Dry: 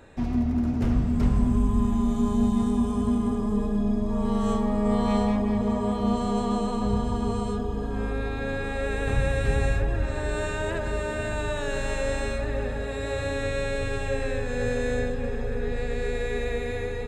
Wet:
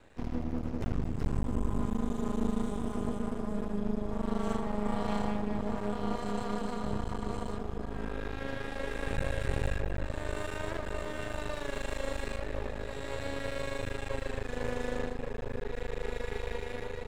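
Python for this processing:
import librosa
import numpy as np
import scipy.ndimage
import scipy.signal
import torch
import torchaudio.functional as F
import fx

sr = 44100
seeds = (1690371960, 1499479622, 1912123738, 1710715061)

y = fx.hum_notches(x, sr, base_hz=60, count=4)
y = np.maximum(y, 0.0)
y = y * 10.0 ** (-4.0 / 20.0)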